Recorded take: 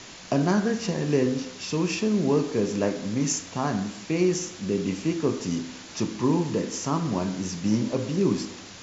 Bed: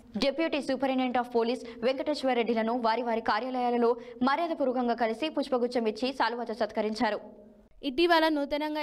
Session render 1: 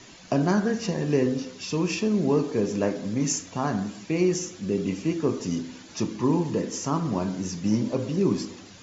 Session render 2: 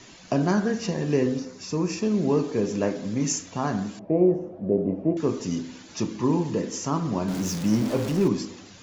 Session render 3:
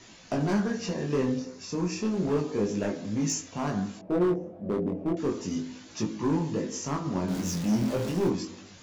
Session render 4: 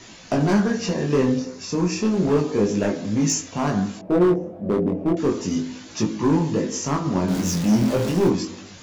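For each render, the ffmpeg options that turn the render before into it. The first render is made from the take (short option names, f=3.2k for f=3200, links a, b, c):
-af "afftdn=nr=8:nf=-43"
-filter_complex "[0:a]asettb=1/sr,asplit=3[a][b][c];[a]atrim=end=1.394[d];[b]atrim=start=1.39:end=2.03,asetpts=PTS-STARTPTS,afade=t=in:d=0.004:c=qsin,afade=t=out:st=0.636:d=0.004:c=qsin,equalizer=f=3.1k:t=o:w=0.65:g=-13[e];[c]atrim=start=2.026[f];[d][e]acrossfade=d=0.004:c1=hsin:c2=qsin[g];[g][f]acrossfade=d=0.004:c1=qsin:c2=hsin,asettb=1/sr,asplit=3[h][i][j];[h]atrim=end=3.994[k];[i]atrim=start=3.99:end=5.17,asetpts=PTS-STARTPTS,afade=t=in:d=0.004:c=qsin,afade=t=out:st=1.176:d=0.004:c=qsin,lowpass=f=640:t=q:w=5.7[l];[j]atrim=start=5.166[m];[k][l]acrossfade=d=0.004:c1=hsin:c2=qsin[n];[n][m]acrossfade=d=0.004:c1=qsin:c2=hsin,asettb=1/sr,asplit=3[o][p][q];[o]atrim=end=7.284[r];[p]atrim=start=7.28:end=8.28,asetpts=PTS-STARTPTS,afade=t=in:d=0.004:c=qsin,afade=t=out:st=0.996:d=0.004:c=qsin,aeval=exprs='val(0)+0.5*0.0335*sgn(val(0))':c=same[s];[q]atrim=start=8.276[t];[r][s]acrossfade=d=0.004:c1=hsin:c2=qsin[u];[u][t]acrossfade=d=0.004:c1=qsin:c2=hsin"
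-af "asoftclip=type=hard:threshold=-18.5dB,flanger=delay=18.5:depth=4.8:speed=0.32"
-af "volume=7.5dB"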